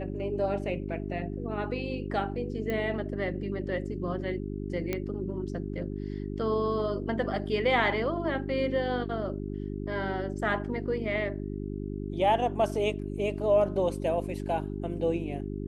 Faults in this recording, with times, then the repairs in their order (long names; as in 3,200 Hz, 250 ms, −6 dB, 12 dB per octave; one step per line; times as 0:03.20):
mains hum 50 Hz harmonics 8 −35 dBFS
0:02.70: click −20 dBFS
0:04.93: click −16 dBFS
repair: click removal
hum removal 50 Hz, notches 8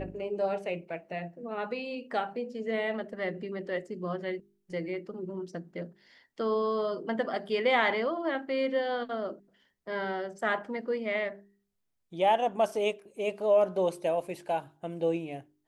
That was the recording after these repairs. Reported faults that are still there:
0:02.70: click